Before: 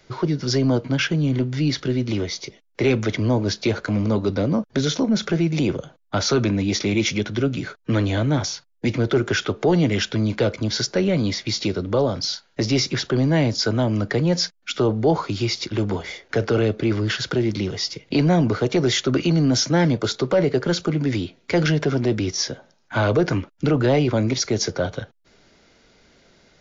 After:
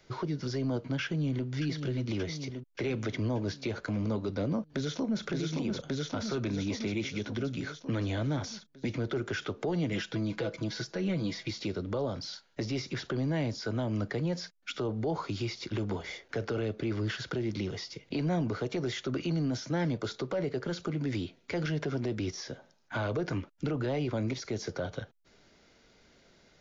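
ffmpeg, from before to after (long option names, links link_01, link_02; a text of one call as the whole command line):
ffmpeg -i in.wav -filter_complex "[0:a]asplit=2[link_01][link_02];[link_02]afade=type=in:start_time=1.03:duration=0.01,afade=type=out:start_time=1.47:duration=0.01,aecho=0:1:580|1160|1740|2320|2900|3480|4060:0.446684|0.245676|0.135122|0.074317|0.0408743|0.0224809|0.0123645[link_03];[link_01][link_03]amix=inputs=2:normalize=0,asplit=2[link_04][link_05];[link_05]afade=type=in:start_time=4.61:duration=0.01,afade=type=out:start_time=5.24:duration=0.01,aecho=0:1:570|1140|1710|2280|2850|3420|3990|4560|5130|5700:1|0.6|0.36|0.216|0.1296|0.07776|0.046656|0.0279936|0.0167962|0.0100777[link_06];[link_04][link_06]amix=inputs=2:normalize=0,asettb=1/sr,asplit=3[link_07][link_08][link_09];[link_07]atrim=end=9.924[link_10];[link_08]atrim=start=9.92:end=11.51,asetpts=PTS-STARTPTS,afade=type=in:duration=0.004:curve=qsin,afade=type=out:start_time=1.586:duration=0.004:curve=qsin,aecho=1:1:6.1:0.65,atrim=end_sample=70119[link_11];[link_09]atrim=start=11.506[link_12];[link_10][link_11]acrossfade=duration=0.004:curve1=hsin:curve2=qsin[link_13];[link_13][link_12]acrossfade=duration=0.004:curve1=qsin:curve2=hsin,alimiter=limit=-17.5dB:level=0:latency=1:release=218,acrossover=split=2900[link_14][link_15];[link_15]acompressor=threshold=-34dB:ratio=4:attack=1:release=60[link_16];[link_14][link_16]amix=inputs=2:normalize=0,volume=-6.5dB" out.wav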